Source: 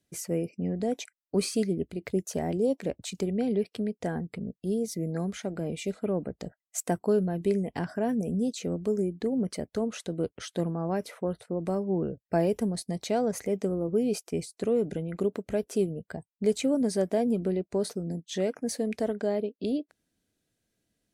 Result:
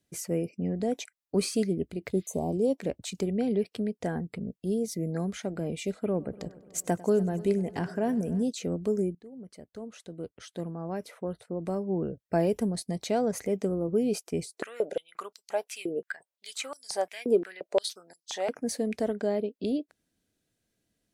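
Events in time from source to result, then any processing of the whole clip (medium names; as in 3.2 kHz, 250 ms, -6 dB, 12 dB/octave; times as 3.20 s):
2.16–2.54 s: spectral replace 1.2–5.9 kHz
6.02–8.43 s: multi-head delay 98 ms, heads first and third, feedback 59%, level -21 dB
9.15–12.51 s: fade in, from -21.5 dB
14.45–18.49 s: step-sequenced high-pass 5.7 Hz 390–4900 Hz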